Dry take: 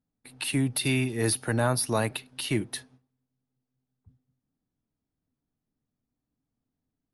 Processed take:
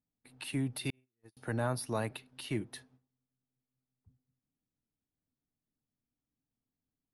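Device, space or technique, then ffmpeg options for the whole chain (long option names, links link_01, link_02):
behind a face mask: -filter_complex "[0:a]highshelf=frequency=2800:gain=-6,asettb=1/sr,asplit=3[link_01][link_02][link_03];[link_01]atrim=end=0.904[link_04];[link_02]atrim=start=0.9:end=1.37,asetpts=PTS-STARTPTS,afade=type=in:duration=0.004:curve=qsin,afade=type=out:start_time=0.466:duration=0.004:curve=qsin,agate=range=-50dB:threshold=-20dB:ratio=16:detection=peak[link_05];[link_03]atrim=start=1.366[link_06];[link_04][link_05]acrossfade=duration=0.004:curve1=hsin:curve2=qsin[link_07];[link_07][link_06]acrossfade=duration=0.004:curve1=qsin:curve2=hsin,volume=-7.5dB"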